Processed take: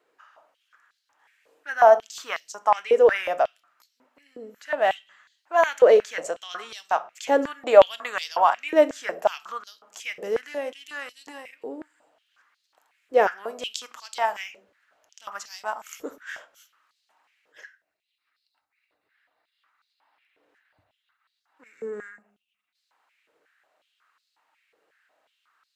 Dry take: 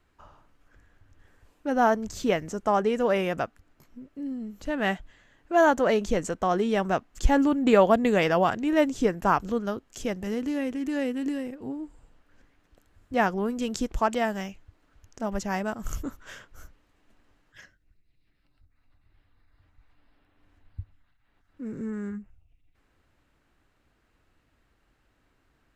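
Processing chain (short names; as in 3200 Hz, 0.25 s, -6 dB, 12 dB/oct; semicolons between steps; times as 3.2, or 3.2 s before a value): reverb RT60 0.50 s, pre-delay 6 ms, DRR 11.5 dB; stepped high-pass 5.5 Hz 470–4300 Hz; gain -1 dB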